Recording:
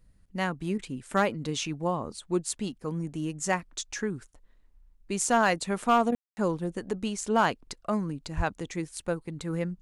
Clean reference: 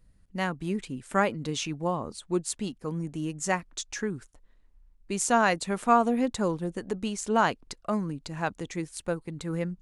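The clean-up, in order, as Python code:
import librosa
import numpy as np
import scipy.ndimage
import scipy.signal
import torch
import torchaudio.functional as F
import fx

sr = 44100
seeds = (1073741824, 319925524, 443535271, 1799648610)

y = fx.fix_declip(x, sr, threshold_db=-14.5)
y = fx.highpass(y, sr, hz=140.0, slope=24, at=(8.36, 8.48), fade=0.02)
y = fx.fix_ambience(y, sr, seeds[0], print_start_s=4.26, print_end_s=4.76, start_s=6.15, end_s=6.37)
y = fx.fix_interpolate(y, sr, at_s=(0.78, 6.11), length_ms=10.0)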